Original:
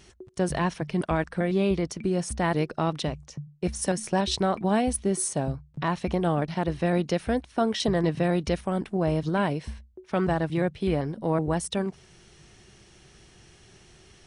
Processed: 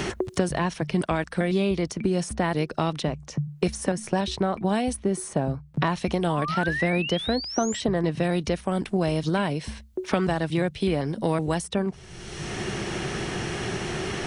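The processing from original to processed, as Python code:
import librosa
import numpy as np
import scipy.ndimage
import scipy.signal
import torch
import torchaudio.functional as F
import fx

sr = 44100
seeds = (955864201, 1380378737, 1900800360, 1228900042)

y = fx.spec_paint(x, sr, seeds[0], shape='rise', start_s=6.29, length_s=1.52, low_hz=920.0, high_hz=8100.0, level_db=-32.0)
y = fx.band_squash(y, sr, depth_pct=100)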